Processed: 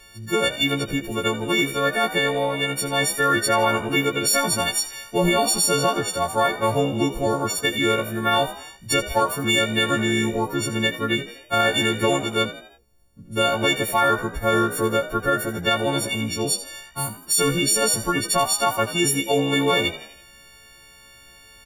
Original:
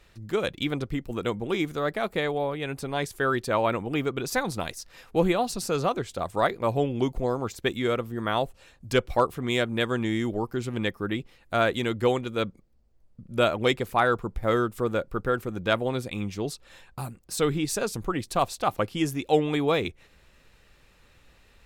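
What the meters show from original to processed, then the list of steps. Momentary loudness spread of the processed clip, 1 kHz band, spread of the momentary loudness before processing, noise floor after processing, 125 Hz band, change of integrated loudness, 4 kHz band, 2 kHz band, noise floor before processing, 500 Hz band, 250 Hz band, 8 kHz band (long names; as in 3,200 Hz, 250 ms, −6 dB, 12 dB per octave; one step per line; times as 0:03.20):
6 LU, +6.0 dB, 8 LU, −49 dBFS, +3.0 dB, +6.0 dB, +11.5 dB, +8.0 dB, −59 dBFS, +3.0 dB, +4.0 dB, +15.5 dB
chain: every partial snapped to a pitch grid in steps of 4 semitones
brickwall limiter −14.5 dBFS, peak gain reduction 7.5 dB
echo with shifted repeats 82 ms, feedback 47%, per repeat +63 Hz, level −14 dB
level +4.5 dB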